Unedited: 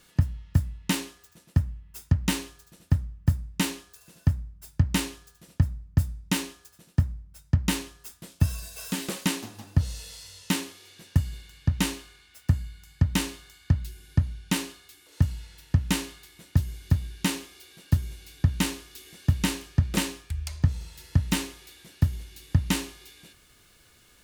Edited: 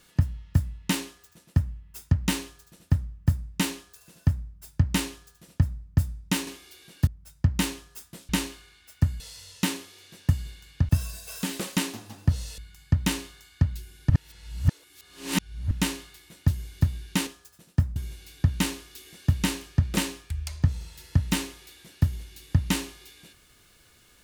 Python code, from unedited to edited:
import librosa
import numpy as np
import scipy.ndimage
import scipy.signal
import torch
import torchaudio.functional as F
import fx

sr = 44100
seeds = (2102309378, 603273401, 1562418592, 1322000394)

y = fx.edit(x, sr, fx.swap(start_s=6.47, length_s=0.69, other_s=17.36, other_length_s=0.6),
    fx.swap(start_s=8.38, length_s=1.69, other_s=11.76, other_length_s=0.91),
    fx.reverse_span(start_s=14.19, length_s=1.61), tone=tone)